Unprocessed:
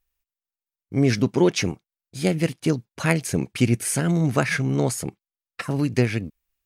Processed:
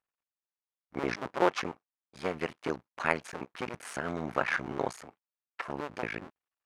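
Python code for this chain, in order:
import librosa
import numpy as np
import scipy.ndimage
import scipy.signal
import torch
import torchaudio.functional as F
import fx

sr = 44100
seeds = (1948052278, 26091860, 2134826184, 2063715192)

y = fx.cycle_switch(x, sr, every=2, mode='muted')
y = fx.bandpass_q(y, sr, hz=1100.0, q=1.1)
y = F.gain(torch.from_numpy(y), 1.5).numpy()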